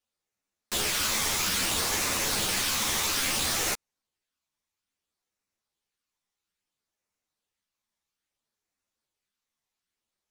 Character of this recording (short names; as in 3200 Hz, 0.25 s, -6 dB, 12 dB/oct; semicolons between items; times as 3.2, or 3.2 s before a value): phasing stages 12, 0.6 Hz, lowest notch 460–4100 Hz; aliases and images of a low sample rate 18000 Hz, jitter 0%; a shimmering, thickened sound